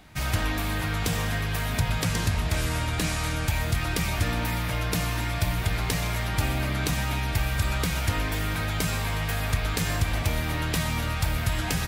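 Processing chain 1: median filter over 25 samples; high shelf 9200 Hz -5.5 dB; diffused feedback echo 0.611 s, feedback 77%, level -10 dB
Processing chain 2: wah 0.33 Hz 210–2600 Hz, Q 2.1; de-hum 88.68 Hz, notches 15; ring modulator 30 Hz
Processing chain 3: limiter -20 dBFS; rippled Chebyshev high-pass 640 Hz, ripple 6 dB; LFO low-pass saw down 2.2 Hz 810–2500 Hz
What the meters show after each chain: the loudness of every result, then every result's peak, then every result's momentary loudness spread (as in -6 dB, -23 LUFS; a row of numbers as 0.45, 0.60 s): -28.5, -40.5, -34.0 LUFS; -13.5, -23.0, -20.0 dBFS; 2, 5, 2 LU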